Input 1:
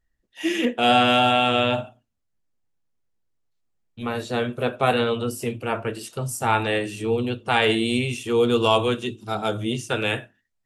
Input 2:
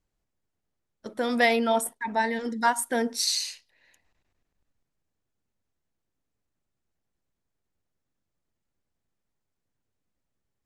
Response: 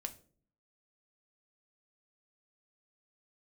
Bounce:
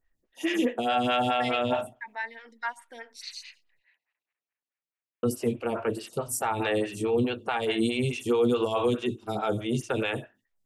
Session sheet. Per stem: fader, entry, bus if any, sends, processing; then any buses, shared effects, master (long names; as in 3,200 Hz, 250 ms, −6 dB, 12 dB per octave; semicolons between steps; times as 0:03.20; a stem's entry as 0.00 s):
+2.0 dB, 0.00 s, muted 0:03.79–0:05.23, no send, brickwall limiter −16 dBFS, peak gain reduction 10.5 dB
+1.0 dB, 0.00 s, no send, resonant band-pass 2,300 Hz, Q 1.8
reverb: not used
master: phaser with staggered stages 4.7 Hz